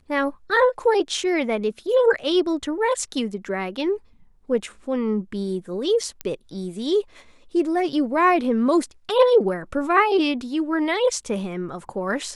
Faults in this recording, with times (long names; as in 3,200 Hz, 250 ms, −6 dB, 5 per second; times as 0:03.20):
0:06.21: click −12 dBFS